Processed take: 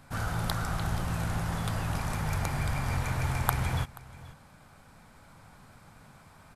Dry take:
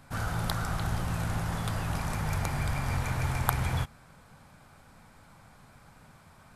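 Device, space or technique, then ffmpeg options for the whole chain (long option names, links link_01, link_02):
ducked delay: -filter_complex "[0:a]asplit=3[link_01][link_02][link_03];[link_02]adelay=481,volume=-5.5dB[link_04];[link_03]apad=whole_len=310302[link_05];[link_04][link_05]sidechaincompress=threshold=-37dB:ratio=8:attack=5.1:release=1320[link_06];[link_01][link_06]amix=inputs=2:normalize=0"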